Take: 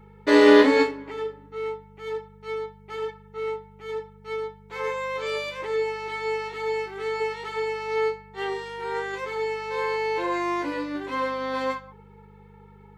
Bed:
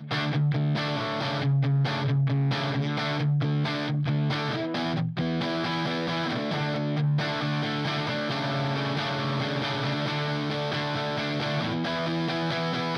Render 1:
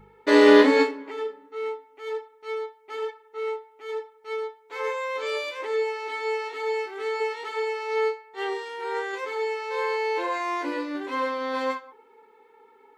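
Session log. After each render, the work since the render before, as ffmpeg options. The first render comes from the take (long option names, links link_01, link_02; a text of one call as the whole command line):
ffmpeg -i in.wav -af "bandreject=frequency=50:width_type=h:width=4,bandreject=frequency=100:width_type=h:width=4,bandreject=frequency=150:width_type=h:width=4,bandreject=frequency=200:width_type=h:width=4,bandreject=frequency=250:width_type=h:width=4,bandreject=frequency=300:width_type=h:width=4,bandreject=frequency=350:width_type=h:width=4" out.wav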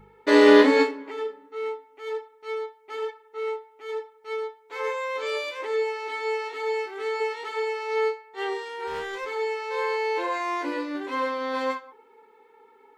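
ffmpeg -i in.wav -filter_complex "[0:a]asettb=1/sr,asplit=3[link_01][link_02][link_03];[link_01]atrim=end=8.874[link_04];[link_02]atrim=start=8.87:end=9.27,asetpts=PTS-STARTPTS,afade=type=in:duration=0.004:curve=qsin,afade=type=out:start_time=0.396:duration=0.004:curve=qsin,volume=28dB,asoftclip=hard,volume=-28dB[link_05];[link_03]atrim=start=9.266[link_06];[link_04][link_05]acrossfade=duration=0.004:curve1=hsin:curve2=qsin[link_07];[link_07][link_06]acrossfade=duration=0.004:curve1=qsin:curve2=hsin" out.wav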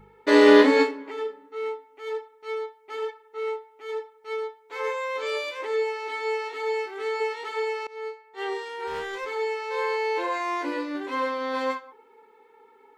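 ffmpeg -i in.wav -filter_complex "[0:a]asplit=2[link_01][link_02];[link_01]atrim=end=7.87,asetpts=PTS-STARTPTS,afade=type=out:start_time=7.866:duration=0.004:curve=hsin:silence=0.0841395[link_03];[link_02]atrim=start=7.87,asetpts=PTS-STARTPTS,afade=type=in:duration=0.7:silence=0.0841395[link_04];[link_03][link_04]concat=n=2:v=0:a=1" out.wav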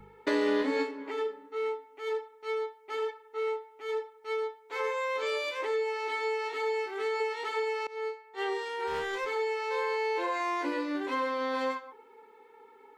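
ffmpeg -i in.wav -filter_complex "[0:a]acrossover=split=130[link_01][link_02];[link_02]acompressor=threshold=-28dB:ratio=4[link_03];[link_01][link_03]amix=inputs=2:normalize=0" out.wav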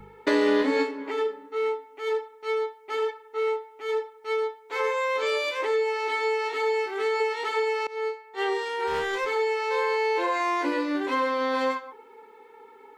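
ffmpeg -i in.wav -af "volume=5.5dB" out.wav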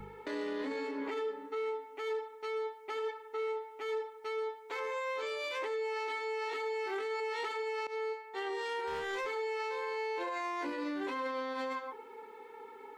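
ffmpeg -i in.wav -af "acompressor=threshold=-29dB:ratio=6,alimiter=level_in=6dB:limit=-24dB:level=0:latency=1:release=11,volume=-6dB" out.wav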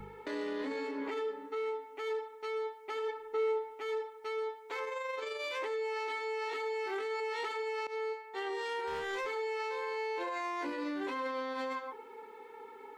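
ffmpeg -i in.wav -filter_complex "[0:a]asplit=3[link_01][link_02][link_03];[link_01]afade=type=out:start_time=3.08:duration=0.02[link_04];[link_02]lowshelf=frequency=410:gain=10.5,afade=type=in:start_time=3.08:duration=0.02,afade=type=out:start_time=3.73:duration=0.02[link_05];[link_03]afade=type=in:start_time=3.73:duration=0.02[link_06];[link_04][link_05][link_06]amix=inputs=3:normalize=0,asettb=1/sr,asplit=3[link_07][link_08][link_09];[link_07]atrim=end=4.844[link_10];[link_08]atrim=start=4.84:end=5.41,asetpts=PTS-STARTPTS,afade=type=in:duration=0.004:curve=qsin,afade=type=out:start_time=0.566:duration=0.004:curve=qsin,tremolo=f=23:d=0.4[link_11];[link_09]atrim=start=5.406[link_12];[link_10][link_11]acrossfade=duration=0.004:curve1=hsin:curve2=qsin[link_13];[link_13][link_12]acrossfade=duration=0.004:curve1=qsin:curve2=hsin" out.wav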